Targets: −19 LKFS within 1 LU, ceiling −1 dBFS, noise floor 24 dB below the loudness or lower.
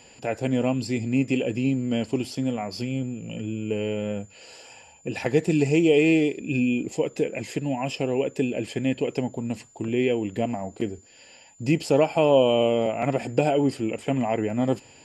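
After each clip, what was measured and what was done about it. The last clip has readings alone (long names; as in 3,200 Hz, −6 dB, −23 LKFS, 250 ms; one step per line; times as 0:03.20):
interfering tone 7,100 Hz; level of the tone −54 dBFS; integrated loudness −25.0 LKFS; sample peak −5.5 dBFS; target loudness −19.0 LKFS
→ notch filter 7,100 Hz, Q 30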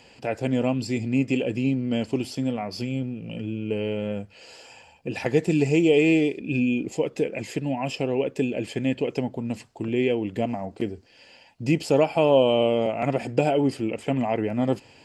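interfering tone none found; integrated loudness −25.0 LKFS; sample peak −5.5 dBFS; target loudness −19.0 LKFS
→ level +6 dB
brickwall limiter −1 dBFS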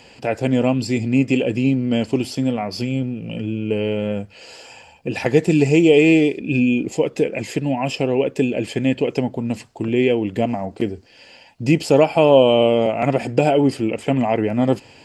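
integrated loudness −19.0 LKFS; sample peak −1.0 dBFS; background noise floor −47 dBFS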